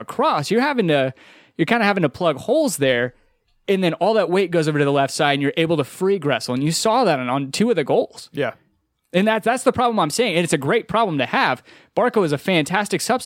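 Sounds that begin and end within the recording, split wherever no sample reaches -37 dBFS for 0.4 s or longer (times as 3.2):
3.68–8.53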